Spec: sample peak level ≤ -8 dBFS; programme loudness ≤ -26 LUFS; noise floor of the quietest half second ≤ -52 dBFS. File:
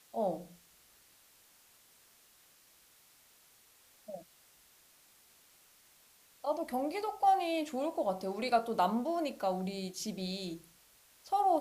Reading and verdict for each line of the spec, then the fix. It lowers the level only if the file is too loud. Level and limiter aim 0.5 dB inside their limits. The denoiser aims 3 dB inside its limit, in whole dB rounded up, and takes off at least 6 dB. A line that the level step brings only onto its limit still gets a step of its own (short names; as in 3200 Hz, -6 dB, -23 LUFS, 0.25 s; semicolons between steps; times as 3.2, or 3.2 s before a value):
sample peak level -16.5 dBFS: OK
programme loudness -34.0 LUFS: OK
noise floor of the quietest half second -64 dBFS: OK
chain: none